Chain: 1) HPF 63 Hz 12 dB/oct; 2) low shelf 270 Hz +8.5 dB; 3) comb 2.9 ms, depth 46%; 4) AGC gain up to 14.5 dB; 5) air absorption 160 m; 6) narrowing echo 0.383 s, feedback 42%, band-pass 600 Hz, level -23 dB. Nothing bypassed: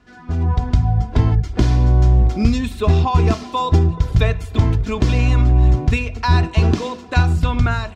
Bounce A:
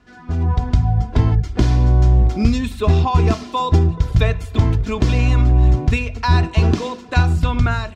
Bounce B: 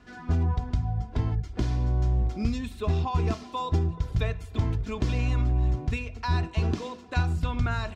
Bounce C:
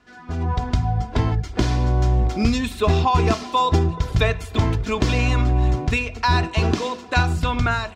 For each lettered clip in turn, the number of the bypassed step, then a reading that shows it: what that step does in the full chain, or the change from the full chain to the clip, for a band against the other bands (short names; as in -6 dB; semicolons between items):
6, echo-to-direct -26.0 dB to none; 4, momentary loudness spread change -1 LU; 2, 125 Hz band -7.0 dB